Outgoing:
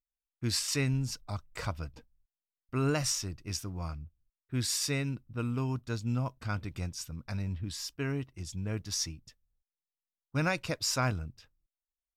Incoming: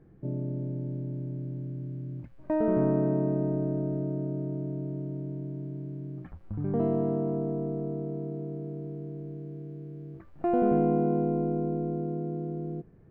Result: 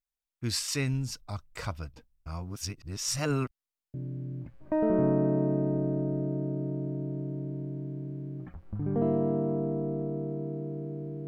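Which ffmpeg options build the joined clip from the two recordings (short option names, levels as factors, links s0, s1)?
-filter_complex "[0:a]apad=whole_dur=11.27,atrim=end=11.27,asplit=2[s0][s1];[s0]atrim=end=2.262[s2];[s1]atrim=start=2.258:end=3.942,asetpts=PTS-STARTPTS,areverse[s3];[1:a]atrim=start=1.718:end=9.05[s4];[s2][s3]acrossfade=d=0.004:c1=hsin:c2=hsin[s5];[s5][s4]acrossfade=d=0.004:c1=hsin:c2=hsin"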